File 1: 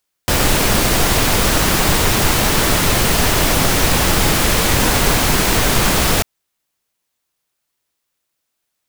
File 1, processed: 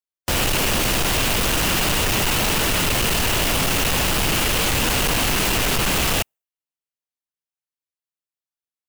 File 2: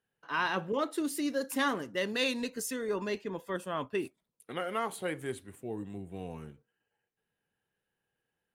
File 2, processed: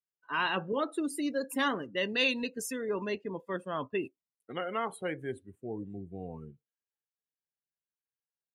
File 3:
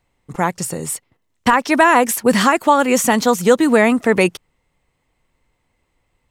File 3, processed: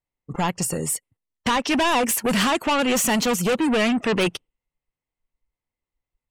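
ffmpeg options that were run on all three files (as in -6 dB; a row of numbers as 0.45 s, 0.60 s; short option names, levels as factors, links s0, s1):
-af "volume=8.41,asoftclip=hard,volume=0.119,afftdn=nr=23:nf=-43,adynamicequalizer=threshold=0.00501:dfrequency=2800:dqfactor=4:tfrequency=2800:tqfactor=4:attack=5:release=100:ratio=0.375:range=3.5:mode=boostabove:tftype=bell"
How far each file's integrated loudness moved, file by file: -4.5 LU, +0.5 LU, -6.0 LU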